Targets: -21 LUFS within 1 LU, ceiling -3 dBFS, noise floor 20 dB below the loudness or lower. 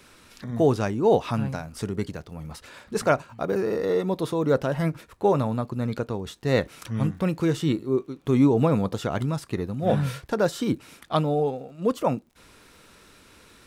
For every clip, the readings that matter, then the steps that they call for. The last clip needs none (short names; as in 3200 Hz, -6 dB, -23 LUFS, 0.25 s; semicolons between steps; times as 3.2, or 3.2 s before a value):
ticks 54/s; loudness -25.5 LUFS; peak -6.5 dBFS; loudness target -21.0 LUFS
-> de-click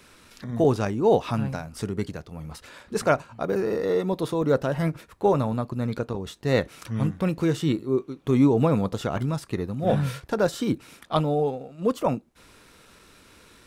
ticks 0.73/s; loudness -25.5 LUFS; peak -6.5 dBFS; loudness target -21.0 LUFS
-> gain +4.5 dB; limiter -3 dBFS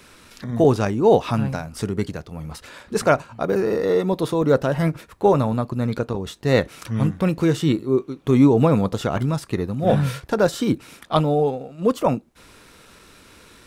loudness -21.0 LUFS; peak -3.0 dBFS; noise floor -50 dBFS